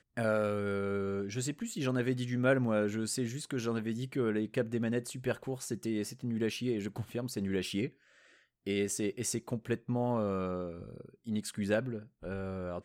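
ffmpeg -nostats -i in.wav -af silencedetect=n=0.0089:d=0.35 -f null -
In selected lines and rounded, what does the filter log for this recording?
silence_start: 7.88
silence_end: 8.67 | silence_duration: 0.78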